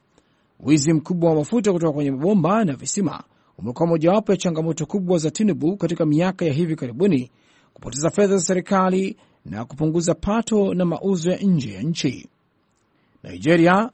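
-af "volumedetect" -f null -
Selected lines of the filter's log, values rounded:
mean_volume: -20.6 dB
max_volume: -3.5 dB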